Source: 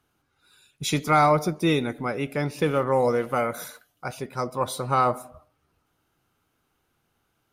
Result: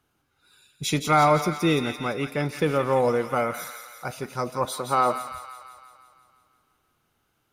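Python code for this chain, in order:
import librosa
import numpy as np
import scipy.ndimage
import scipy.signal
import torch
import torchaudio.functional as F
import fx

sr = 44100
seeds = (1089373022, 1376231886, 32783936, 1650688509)

y = fx.highpass(x, sr, hz=200.0, slope=12, at=(4.65, 5.15))
y = fx.echo_wet_highpass(y, sr, ms=170, feedback_pct=61, hz=1500.0, wet_db=-6.5)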